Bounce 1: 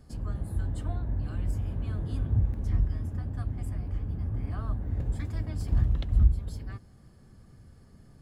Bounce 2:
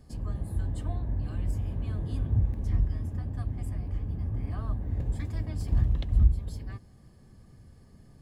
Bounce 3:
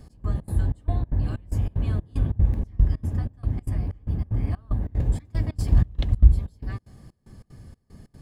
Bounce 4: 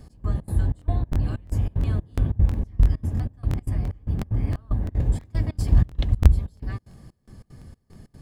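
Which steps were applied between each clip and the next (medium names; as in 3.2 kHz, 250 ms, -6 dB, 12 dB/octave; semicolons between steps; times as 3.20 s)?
band-stop 1.4 kHz, Q 5.9
trance gate "x..xx.xx" 188 bpm -24 dB; trim +7.5 dB
crackling interface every 0.34 s, samples 1024, repeat, from 0.77 s; trim +1 dB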